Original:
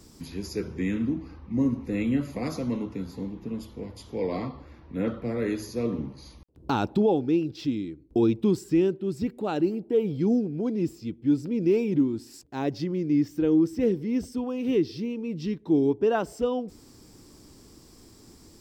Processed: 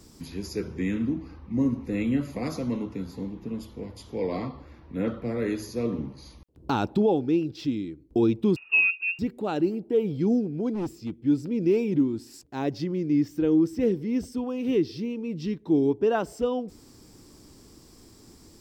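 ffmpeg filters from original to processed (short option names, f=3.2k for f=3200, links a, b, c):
-filter_complex "[0:a]asettb=1/sr,asplit=3[a][b][c];[a]atrim=end=8.564[d];[b]atrim=start=8.56:end=9.19,asetpts=PTS-STARTPTS,afade=t=in:d=0.004:c=qsin,afade=t=out:st=0.626:d=0.004:c=qsin,lowpass=f=2.5k:t=q:w=0.5098,lowpass=f=2.5k:t=q:w=0.6013,lowpass=f=2.5k:t=q:w=0.9,lowpass=f=2.5k:t=q:w=2.563,afreqshift=-2900[e];[c]atrim=start=9.186[f];[d][e]acrossfade=d=0.004:c1=hsin:c2=qsin[g];[g][f]acrossfade=d=0.004:c1=qsin:c2=hsin,asplit=3[h][i][j];[h]afade=t=out:st=10.73:d=0.02[k];[i]asoftclip=type=hard:threshold=-26dB,afade=t=in:st=10.73:d=0.02,afade=t=out:st=11.15:d=0.02[l];[j]afade=t=in:st=11.15:d=0.02[m];[k][l][m]amix=inputs=3:normalize=0"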